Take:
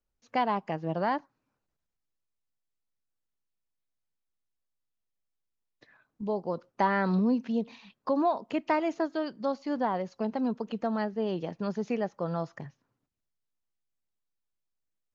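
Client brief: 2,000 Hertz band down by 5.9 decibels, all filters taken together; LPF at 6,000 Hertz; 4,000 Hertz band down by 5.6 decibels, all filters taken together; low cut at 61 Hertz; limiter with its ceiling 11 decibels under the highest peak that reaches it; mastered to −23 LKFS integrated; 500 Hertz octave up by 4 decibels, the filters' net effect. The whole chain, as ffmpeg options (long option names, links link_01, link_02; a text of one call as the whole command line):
ffmpeg -i in.wav -af "highpass=61,lowpass=6000,equalizer=frequency=500:width_type=o:gain=5.5,equalizer=frequency=2000:width_type=o:gain=-7,equalizer=frequency=4000:width_type=o:gain=-4,volume=11dB,alimiter=limit=-13dB:level=0:latency=1" out.wav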